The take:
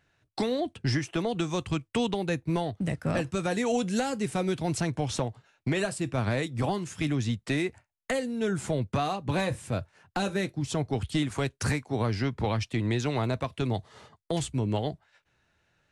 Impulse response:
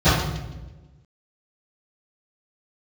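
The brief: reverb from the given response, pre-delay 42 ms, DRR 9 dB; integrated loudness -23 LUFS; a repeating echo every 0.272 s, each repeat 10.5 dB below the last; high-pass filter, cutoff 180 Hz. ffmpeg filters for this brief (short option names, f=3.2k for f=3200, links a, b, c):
-filter_complex "[0:a]highpass=180,aecho=1:1:272|544|816:0.299|0.0896|0.0269,asplit=2[a][b];[1:a]atrim=start_sample=2205,adelay=42[c];[b][c]afir=irnorm=-1:irlink=0,volume=-32dB[d];[a][d]amix=inputs=2:normalize=0,volume=6dB"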